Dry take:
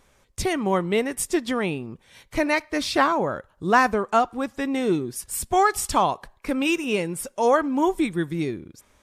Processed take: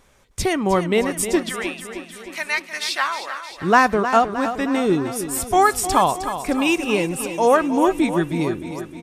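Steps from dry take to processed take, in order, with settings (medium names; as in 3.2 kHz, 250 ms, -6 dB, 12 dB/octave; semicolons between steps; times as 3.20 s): 1.49–3.51 s: high-pass 1.4 kHz 12 dB/octave; feedback delay 310 ms, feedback 59%, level -10.5 dB; trim +3.5 dB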